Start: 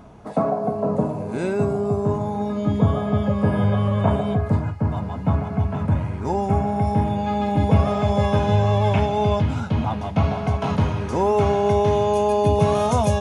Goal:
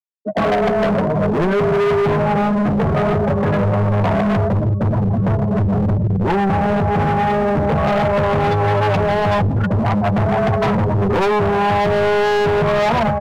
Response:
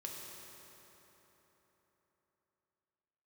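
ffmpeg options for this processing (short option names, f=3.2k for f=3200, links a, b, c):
-filter_complex "[0:a]asettb=1/sr,asplit=3[a][b][c];[a]atrim=end=4.944[d];[b]atrim=start=4.94:end=7.62,asetpts=PTS-STARTPTS,afade=t=in:d=0.004:c=qsin,afade=t=out:st=2.676:d=0.004:c=qsin,equalizer=f=1.4k:t=o:w=1.7:g=-4[e];[c]atrim=start=7.616[f];[d][e]acrossfade=d=0.004:c1=hsin:c2=qsin[g];[g][f]acrossfade=d=0.004:c1=qsin:c2=hsin,afftfilt=real='re*gte(hypot(re,im),0.126)':imag='im*gte(hypot(re,im),0.126)':win_size=1024:overlap=0.75,alimiter=limit=-19dB:level=0:latency=1:release=261,dynaudnorm=f=110:g=5:m=16.5dB,highpass=f=110:w=0.5412,highpass=f=110:w=1.3066,asplit=2[h][i];[i]adelay=1399,volume=-18dB,highshelf=f=4k:g=-31.5[j];[h][j]amix=inputs=2:normalize=0,flanger=delay=8.9:depth=4.6:regen=12:speed=0.19:shape=triangular,asoftclip=type=hard:threshold=-19.5dB,equalizer=f=270:t=o:w=0.34:g=-9.5,asoftclip=type=tanh:threshold=-19dB,volume=8dB"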